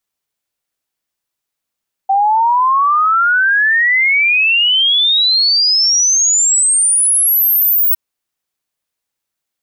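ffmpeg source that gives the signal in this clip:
-f lavfi -i "aevalsrc='0.355*clip(min(t,5.86-t)/0.01,0,1)*sin(2*PI*770*5.86/log(16000/770)*(exp(log(16000/770)*t/5.86)-1))':d=5.86:s=44100"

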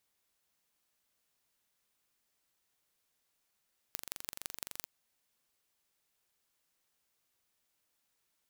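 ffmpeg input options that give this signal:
-f lavfi -i "aevalsrc='0.335*eq(mod(n,1869),0)*(0.5+0.5*eq(mod(n,7476),0))':d=0.92:s=44100"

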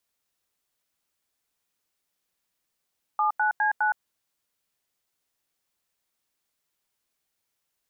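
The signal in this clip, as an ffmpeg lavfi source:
-f lavfi -i "aevalsrc='0.0708*clip(min(mod(t,0.205),0.116-mod(t,0.205))/0.002,0,1)*(eq(floor(t/0.205),0)*(sin(2*PI*852*mod(t,0.205))+sin(2*PI*1209*mod(t,0.205)))+eq(floor(t/0.205),1)*(sin(2*PI*852*mod(t,0.205))+sin(2*PI*1477*mod(t,0.205)))+eq(floor(t/0.205),2)*(sin(2*PI*852*mod(t,0.205))+sin(2*PI*1633*mod(t,0.205)))+eq(floor(t/0.205),3)*(sin(2*PI*852*mod(t,0.205))+sin(2*PI*1477*mod(t,0.205))))':d=0.82:s=44100"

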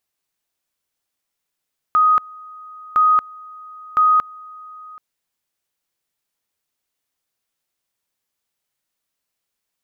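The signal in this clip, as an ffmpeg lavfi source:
-f lavfi -i "aevalsrc='pow(10,(-10.5-24.5*gte(mod(t,1.01),0.23))/20)*sin(2*PI*1250*t)':d=3.03:s=44100"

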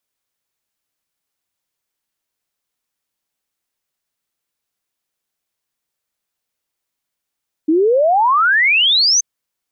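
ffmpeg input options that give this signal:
-f lavfi -i "aevalsrc='0.316*clip(min(t,1.53-t)/0.01,0,1)*sin(2*PI*300*1.53/log(6400/300)*(exp(log(6400/300)*t/1.53)-1))':d=1.53:s=44100"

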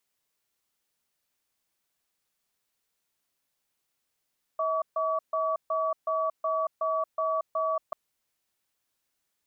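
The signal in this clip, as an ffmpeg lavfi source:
-f lavfi -i "aevalsrc='0.0422*(sin(2*PI*642*t)+sin(2*PI*1140*t))*clip(min(mod(t,0.37),0.23-mod(t,0.37))/0.005,0,1)':d=3.34:s=44100"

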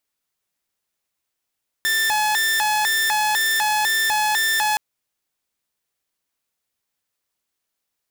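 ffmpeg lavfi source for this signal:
-f lavfi -i "aevalsrc='0.178*(2*mod((1315.5*t+464.5/2*(0.5-abs(mod(2*t,1)-0.5))),1)-1)':d=2.92:s=44100"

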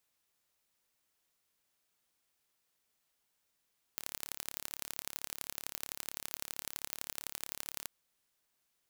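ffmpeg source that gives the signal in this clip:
-f lavfi -i "aevalsrc='0.316*eq(mod(n,1239),0)*(0.5+0.5*eq(mod(n,3717),0))':d=3.88:s=44100"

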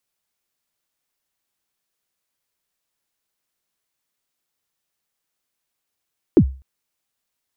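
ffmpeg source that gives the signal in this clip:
-f lavfi -i "aevalsrc='0.631*pow(10,-3*t/0.35)*sin(2*PI*(410*0.073/log(66/410)*(exp(log(66/410)*min(t,0.073)/0.073)-1)+66*max(t-0.073,0)))':d=0.25:s=44100"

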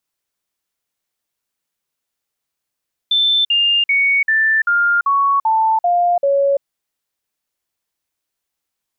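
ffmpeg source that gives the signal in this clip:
-f lavfi -i "aevalsrc='0.266*clip(min(mod(t,0.39),0.34-mod(t,0.39))/0.005,0,1)*sin(2*PI*3540*pow(2,-floor(t/0.39)/3)*mod(t,0.39))':d=3.51:s=44100"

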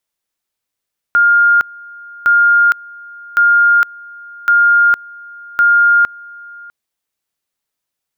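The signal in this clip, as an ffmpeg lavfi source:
-f lavfi -i "aevalsrc='pow(10,(-6.5-24.5*gte(mod(t,1.11),0.46))/20)*sin(2*PI*1410*t)':d=5.55:s=44100"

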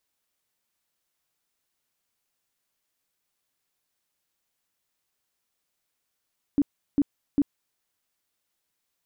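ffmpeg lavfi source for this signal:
-f lavfi -i "aevalsrc='0.15*sin(2*PI*285*mod(t,0.4))*lt(mod(t,0.4),11/285)':d=1.2:s=44100"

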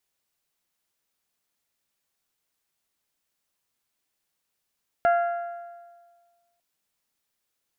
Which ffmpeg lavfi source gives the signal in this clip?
-f lavfi -i "aevalsrc='0.158*pow(10,-3*t/1.59)*sin(2*PI*691*t)+0.0631*pow(10,-3*t/1.291)*sin(2*PI*1382*t)+0.0251*pow(10,-3*t/1.223)*sin(2*PI*1658.4*t)+0.01*pow(10,-3*t/1.144)*sin(2*PI*2073*t)+0.00398*pow(10,-3*t/1.049)*sin(2*PI*2764*t)':d=1.55:s=44100"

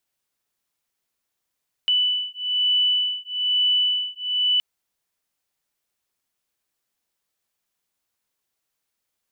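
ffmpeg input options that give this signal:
-f lavfi -i "aevalsrc='0.0794*(sin(2*PI*2980*t)+sin(2*PI*2981.1*t))':d=2.72:s=44100"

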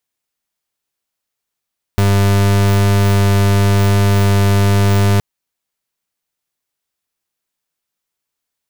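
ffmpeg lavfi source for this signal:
-f lavfi -i "aevalsrc='0.266*(2*lt(mod(99.9*t,1),0.37)-1)':d=3.22:s=44100"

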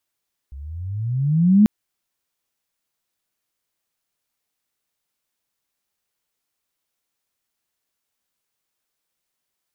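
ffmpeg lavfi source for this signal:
-f lavfi -i "aevalsrc='pow(10,(-8+25*(t/1.14-1))/20)*sin(2*PI*65*1.14/(21*log(2)/12)*(exp(21*log(2)/12*t/1.14)-1))':d=1.14:s=44100"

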